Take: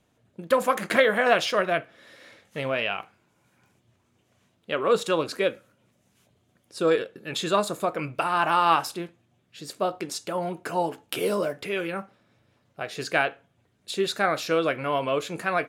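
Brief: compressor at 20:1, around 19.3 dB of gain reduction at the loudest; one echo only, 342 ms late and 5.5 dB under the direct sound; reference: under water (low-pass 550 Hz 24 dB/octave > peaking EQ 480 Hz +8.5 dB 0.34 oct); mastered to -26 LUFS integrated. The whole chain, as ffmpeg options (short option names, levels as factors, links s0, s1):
-af "acompressor=threshold=0.02:ratio=20,lowpass=f=550:w=0.5412,lowpass=f=550:w=1.3066,equalizer=f=480:t=o:w=0.34:g=8.5,aecho=1:1:342:0.531,volume=4.47"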